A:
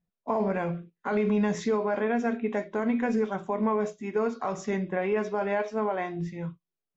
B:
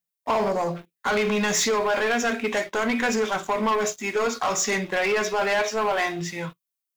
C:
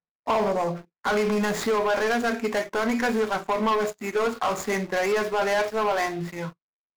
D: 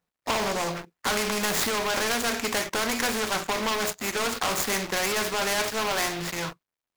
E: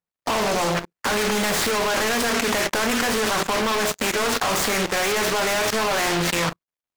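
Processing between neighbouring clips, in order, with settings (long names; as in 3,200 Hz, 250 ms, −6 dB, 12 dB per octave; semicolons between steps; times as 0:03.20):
gain on a spectral selection 0:00.49–0:00.76, 1,200–3,800 Hz −27 dB; spectral tilt +4.5 dB per octave; leveller curve on the samples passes 3
running median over 15 samples
every bin compressed towards the loudest bin 2 to 1; level +6 dB
leveller curve on the samples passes 3; output level in coarse steps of 12 dB; highs frequency-modulated by the lows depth 0.46 ms; level +2.5 dB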